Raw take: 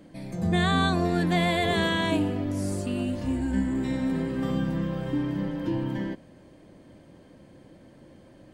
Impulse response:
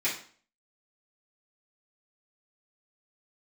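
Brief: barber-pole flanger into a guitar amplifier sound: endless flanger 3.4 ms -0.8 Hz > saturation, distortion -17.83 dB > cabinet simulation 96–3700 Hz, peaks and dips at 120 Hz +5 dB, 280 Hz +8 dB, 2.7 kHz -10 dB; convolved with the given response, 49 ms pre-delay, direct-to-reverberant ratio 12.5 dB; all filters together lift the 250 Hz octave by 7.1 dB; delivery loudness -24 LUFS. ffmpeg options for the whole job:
-filter_complex "[0:a]equalizer=f=250:t=o:g=3,asplit=2[s0][s1];[1:a]atrim=start_sample=2205,adelay=49[s2];[s1][s2]afir=irnorm=-1:irlink=0,volume=0.0841[s3];[s0][s3]amix=inputs=2:normalize=0,asplit=2[s4][s5];[s5]adelay=3.4,afreqshift=-0.8[s6];[s4][s6]amix=inputs=2:normalize=1,asoftclip=threshold=0.0891,highpass=96,equalizer=f=120:t=q:w=4:g=5,equalizer=f=280:t=q:w=4:g=8,equalizer=f=2700:t=q:w=4:g=-10,lowpass=f=3700:w=0.5412,lowpass=f=3700:w=1.3066,volume=1.33"

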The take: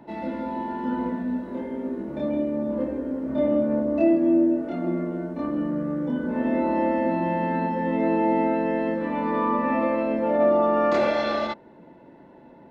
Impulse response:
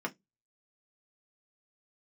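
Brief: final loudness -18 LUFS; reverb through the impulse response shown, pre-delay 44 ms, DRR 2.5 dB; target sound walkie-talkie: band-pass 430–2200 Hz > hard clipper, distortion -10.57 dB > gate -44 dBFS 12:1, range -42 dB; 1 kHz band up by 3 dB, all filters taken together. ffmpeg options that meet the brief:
-filter_complex "[0:a]equalizer=f=1000:t=o:g=4,asplit=2[s0][s1];[1:a]atrim=start_sample=2205,adelay=44[s2];[s1][s2]afir=irnorm=-1:irlink=0,volume=0.447[s3];[s0][s3]amix=inputs=2:normalize=0,highpass=430,lowpass=2200,asoftclip=type=hard:threshold=0.106,agate=range=0.00794:threshold=0.00631:ratio=12,volume=2.51"

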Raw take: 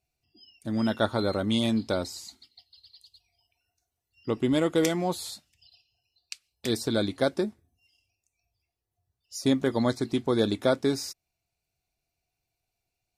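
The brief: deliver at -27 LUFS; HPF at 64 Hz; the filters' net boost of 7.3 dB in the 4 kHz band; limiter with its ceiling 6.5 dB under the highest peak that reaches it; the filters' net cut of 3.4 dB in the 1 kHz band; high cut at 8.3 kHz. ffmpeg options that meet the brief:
-af "highpass=64,lowpass=8300,equalizer=f=1000:t=o:g=-5.5,equalizer=f=4000:t=o:g=9,volume=1.26,alimiter=limit=0.224:level=0:latency=1"

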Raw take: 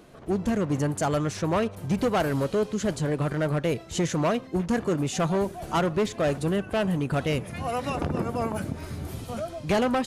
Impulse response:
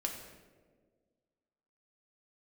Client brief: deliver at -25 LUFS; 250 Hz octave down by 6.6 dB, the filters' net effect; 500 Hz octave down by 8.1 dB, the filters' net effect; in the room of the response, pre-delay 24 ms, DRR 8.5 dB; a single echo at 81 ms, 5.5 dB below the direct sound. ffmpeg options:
-filter_complex "[0:a]equalizer=f=250:t=o:g=-7.5,equalizer=f=500:t=o:g=-8.5,aecho=1:1:81:0.531,asplit=2[s0][s1];[1:a]atrim=start_sample=2205,adelay=24[s2];[s1][s2]afir=irnorm=-1:irlink=0,volume=0.316[s3];[s0][s3]amix=inputs=2:normalize=0,volume=1.78"

